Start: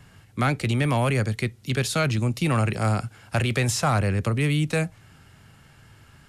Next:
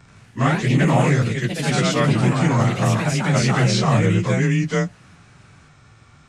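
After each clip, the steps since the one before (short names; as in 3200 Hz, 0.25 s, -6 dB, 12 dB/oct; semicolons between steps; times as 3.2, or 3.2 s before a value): inharmonic rescaling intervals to 91%; echoes that change speed 82 ms, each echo +2 st, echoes 3; gain +4.5 dB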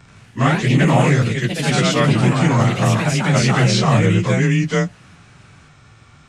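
bell 3000 Hz +2.5 dB 0.68 oct; gain +2.5 dB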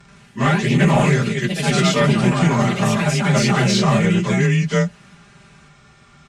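one-sided clip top -9 dBFS; comb 5 ms, depth 81%; gain -2.5 dB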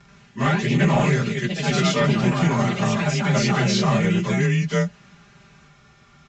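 steep low-pass 7500 Hz 96 dB/oct; gain -3.5 dB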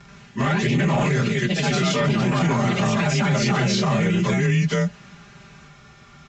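limiter -17.5 dBFS, peak gain reduction 10 dB; gain +5 dB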